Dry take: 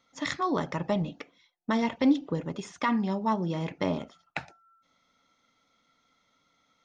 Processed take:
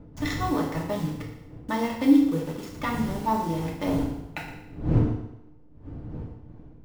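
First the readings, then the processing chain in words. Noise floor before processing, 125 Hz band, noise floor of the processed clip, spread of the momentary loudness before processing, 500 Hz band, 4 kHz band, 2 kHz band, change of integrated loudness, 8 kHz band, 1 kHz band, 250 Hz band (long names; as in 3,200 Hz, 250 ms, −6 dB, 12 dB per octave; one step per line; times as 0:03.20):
−72 dBFS, +8.0 dB, −49 dBFS, 14 LU, +1.5 dB, 0.0 dB, +0.5 dB, +3.5 dB, can't be measured, +2.0 dB, +4.5 dB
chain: hold until the input has moved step −38 dBFS
wind on the microphone 180 Hz −34 dBFS
feedback delay network reverb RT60 0.88 s, low-frequency decay 0.85×, high-frequency decay 0.95×, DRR −2.5 dB
level −3.5 dB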